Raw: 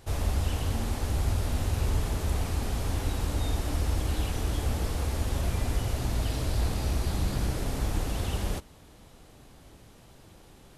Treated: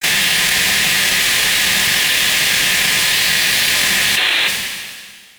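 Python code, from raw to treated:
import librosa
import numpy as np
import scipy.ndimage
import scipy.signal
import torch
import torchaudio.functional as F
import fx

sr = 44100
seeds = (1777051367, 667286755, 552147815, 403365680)

y = fx.tracing_dist(x, sr, depth_ms=0.13)
y = fx.brickwall_bandstop(y, sr, low_hz=180.0, high_hz=1600.0)
y = fx.air_absorb(y, sr, metres=240.0)
y = fx.spec_gate(y, sr, threshold_db=-30, keep='weak')
y = fx.fuzz(y, sr, gain_db=52.0, gate_db=-52.0)
y = fx.high_shelf(y, sr, hz=4400.0, db=4.5)
y = fx.stretch_vocoder(y, sr, factor=0.5)
y = fx.rev_double_slope(y, sr, seeds[0], early_s=0.32, late_s=1.8, knee_db=-26, drr_db=3.5)
y = fx.spec_box(y, sr, start_s=4.17, length_s=0.3, low_hz=260.0, high_hz=4300.0, gain_db=12)
y = fx.env_flatten(y, sr, amount_pct=100)
y = y * 10.0 ** (-5.0 / 20.0)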